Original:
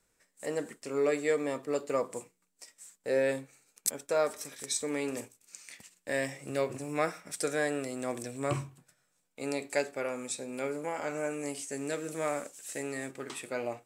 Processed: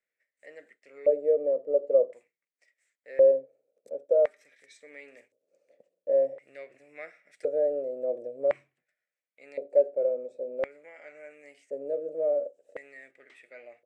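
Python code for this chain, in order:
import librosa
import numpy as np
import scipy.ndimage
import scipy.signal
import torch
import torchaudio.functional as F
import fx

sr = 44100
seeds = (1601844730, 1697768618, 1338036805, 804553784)

y = fx.low_shelf_res(x, sr, hz=760.0, db=8.0, q=3.0)
y = fx.filter_lfo_bandpass(y, sr, shape='square', hz=0.47, low_hz=540.0, high_hz=2000.0, q=4.9)
y = y * librosa.db_to_amplitude(-2.0)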